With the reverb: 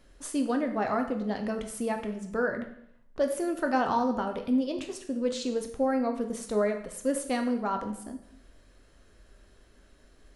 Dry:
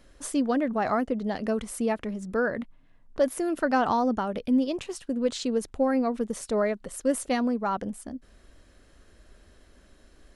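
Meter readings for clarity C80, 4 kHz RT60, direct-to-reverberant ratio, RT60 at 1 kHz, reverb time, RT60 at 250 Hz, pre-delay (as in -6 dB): 12.5 dB, 0.65 s, 4.5 dB, 0.70 s, 0.70 s, 0.70 s, 4 ms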